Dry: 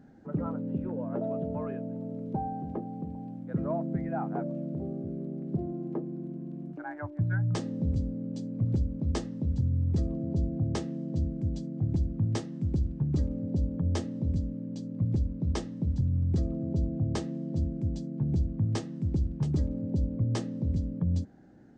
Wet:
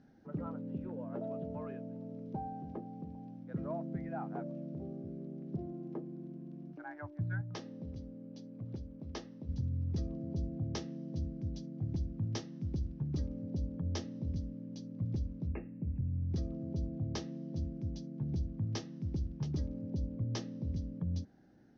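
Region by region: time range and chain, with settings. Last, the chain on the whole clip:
7.41–9.49 s: low-pass 3 kHz 6 dB/octave + bass shelf 230 Hz -10.5 dB
15.47–16.31 s: brick-wall FIR low-pass 2.8 kHz + peaking EQ 1.1 kHz -9 dB 1.5 oct
whole clip: elliptic low-pass 5.9 kHz, stop band 40 dB; treble shelf 4 kHz +11 dB; trim -7 dB

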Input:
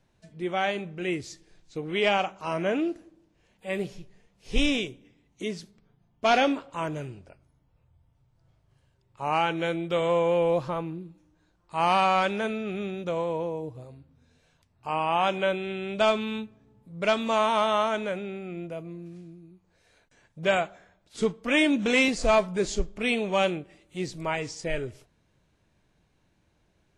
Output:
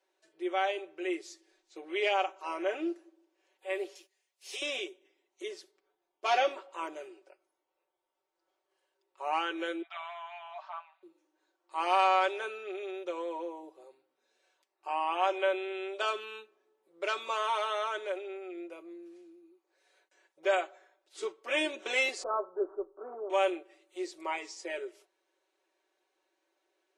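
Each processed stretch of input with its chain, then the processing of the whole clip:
3.95–4.62 s: tilt EQ +4.5 dB/octave + compression 5:1, threshold -30 dBFS + gate -59 dBFS, range -11 dB
9.82–11.03 s: brick-wall FIR high-pass 590 Hz + distance through air 220 m
22.23–23.30 s: CVSD coder 64 kbps + steep low-pass 1.4 kHz 72 dB/octave
whole clip: elliptic high-pass 320 Hz, stop band 40 dB; comb 5.3 ms, depth 76%; trim -7 dB

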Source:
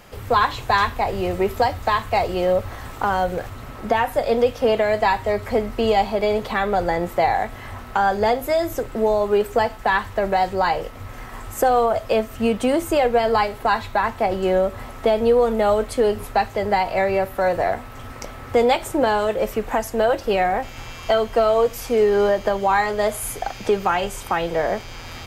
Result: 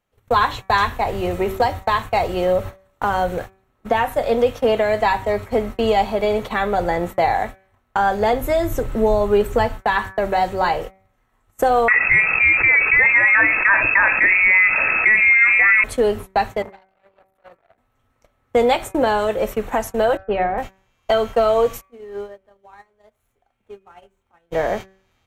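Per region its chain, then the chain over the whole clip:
8.33–9.80 s: bass shelf 150 Hz +11 dB + band-stop 710 Hz, Q 14
11.88–15.84 s: frequency inversion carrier 2.6 kHz + level flattener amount 70%
16.62–17.78 s: compression 2.5:1, threshold -30 dBFS + transformer saturation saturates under 1.3 kHz
20.17–20.58 s: distance through air 390 m + three bands expanded up and down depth 100%
21.81–24.51 s: median filter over 9 samples + compression 2:1, threshold -27 dBFS + feedback comb 80 Hz, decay 0.26 s, harmonics odd
whole clip: band-stop 4.9 kHz, Q 6.5; gate -28 dBFS, range -31 dB; de-hum 191.1 Hz, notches 13; trim +1 dB

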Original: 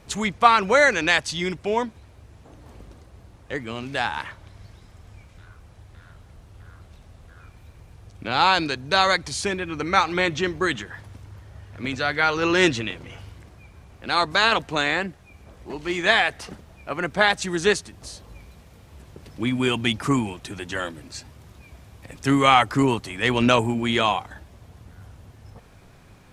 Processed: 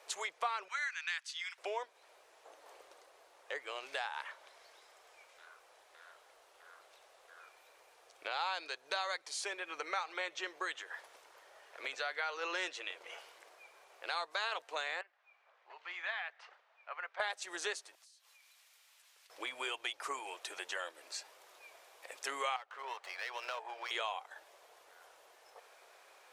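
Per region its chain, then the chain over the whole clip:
0.68–1.58 s: inverse Chebyshev high-pass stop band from 300 Hz, stop band 70 dB + tilt EQ -1.5 dB/octave
15.01–17.20 s: high-pass 1.2 kHz + tape spacing loss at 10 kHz 35 dB
17.95–19.30 s: Bessel high-pass 2.5 kHz + compression 12:1, threshold -56 dBFS
22.56–23.91 s: three-band isolator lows -24 dB, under 500 Hz, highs -22 dB, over 3.5 kHz + compression 2:1, threshold -33 dBFS + sliding maximum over 5 samples
whole clip: inverse Chebyshev high-pass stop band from 240 Hz, stop band 40 dB; compression 3:1, threshold -35 dBFS; trim -4 dB

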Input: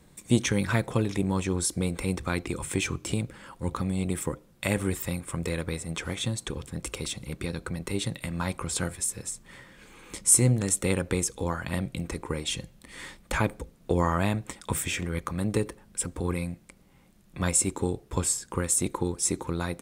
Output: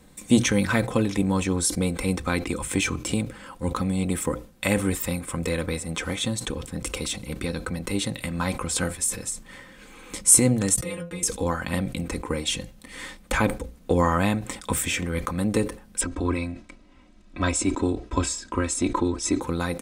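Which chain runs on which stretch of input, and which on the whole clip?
10.76–11.23 s: expander -41 dBFS + inharmonic resonator 170 Hz, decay 0.21 s, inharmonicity 0.002
16.01–19.41 s: Bessel low-pass 5.1 kHz, order 4 + comb 3.1 ms
whole clip: hum notches 60/120 Hz; comb 3.9 ms, depth 40%; decay stretcher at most 150 dB/s; trim +3.5 dB

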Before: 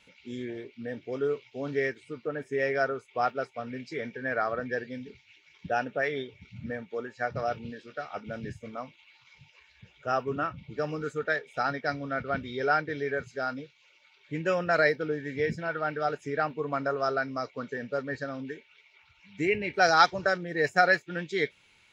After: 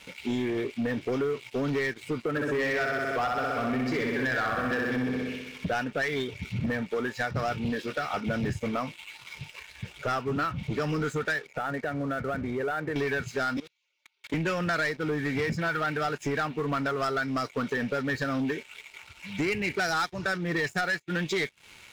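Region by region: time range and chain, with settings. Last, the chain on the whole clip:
2.30–5.68 s: treble shelf 4.5 kHz -7 dB + flutter echo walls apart 10.8 m, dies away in 1.1 s
11.47–12.96 s: low-pass 2 kHz 24 dB/octave + compression 5:1, threshold -42 dBFS
13.57–14.34 s: high-pass 200 Hz 24 dB/octave + treble shelf 3.8 kHz +10 dB + level held to a coarse grid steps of 19 dB
whole clip: dynamic bell 560 Hz, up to -8 dB, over -41 dBFS, Q 1.3; compression 5:1, threshold -38 dBFS; waveshaping leveller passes 3; trim +3.5 dB

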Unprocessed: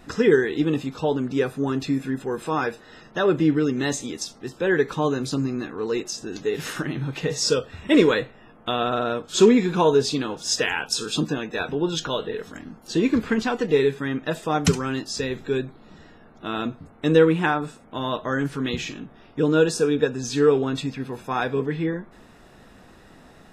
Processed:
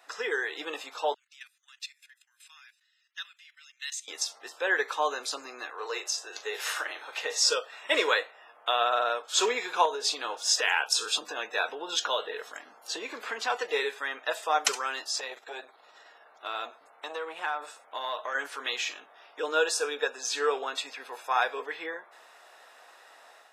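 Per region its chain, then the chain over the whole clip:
1.14–4.08 s: inverse Chebyshev high-pass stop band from 350 Hz, stop band 80 dB + level held to a coarse grid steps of 12 dB + upward expansion, over -59 dBFS
5.70–7.22 s: high-pass 350 Hz 24 dB/octave + doubling 40 ms -12 dB
9.85–13.50 s: bass shelf 240 Hz +10 dB + compression 5:1, threshold -18 dBFS
15.10–18.35 s: compression 4:1, threshold -25 dBFS + transformer saturation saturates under 420 Hz
whole clip: high-pass 610 Hz 24 dB/octave; level rider gain up to 5 dB; trim -4.5 dB

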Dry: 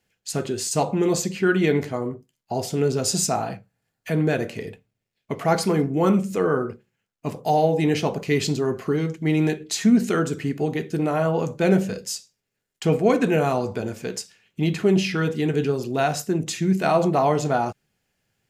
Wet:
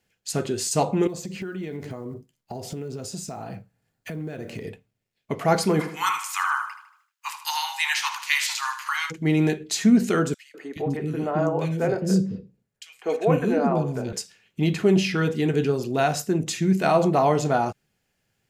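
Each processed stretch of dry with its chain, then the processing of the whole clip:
1.07–4.65 s: block-companded coder 7-bit + compression 8:1, threshold -33 dBFS + bass shelf 460 Hz +5 dB
5.79–9.10 s: spectral peaks clipped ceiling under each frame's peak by 20 dB + steep high-pass 900 Hz 72 dB/octave + feedback delay 77 ms, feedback 47%, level -11 dB
10.34–14.13 s: treble shelf 2.1 kHz -7.5 dB + three bands offset in time highs, mids, lows 200/420 ms, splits 350/2300 Hz
whole clip: none

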